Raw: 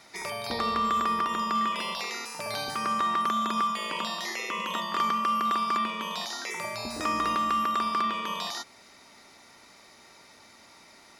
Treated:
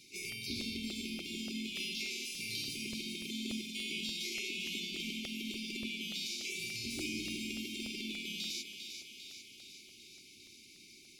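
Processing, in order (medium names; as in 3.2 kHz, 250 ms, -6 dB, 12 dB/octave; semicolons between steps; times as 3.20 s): hum notches 50/100/150/200/250 Hz; in parallel at -6 dB: saturation -35.5 dBFS, distortion -6 dB; on the sum: harmony voices +3 st -8 dB; brick-wall FIR band-stop 420–2100 Hz; on a send: thinning echo 399 ms, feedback 62%, high-pass 430 Hz, level -7 dB; on the sum: crackling interface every 0.29 s, samples 64, repeat, from 0.32 s; trim -6.5 dB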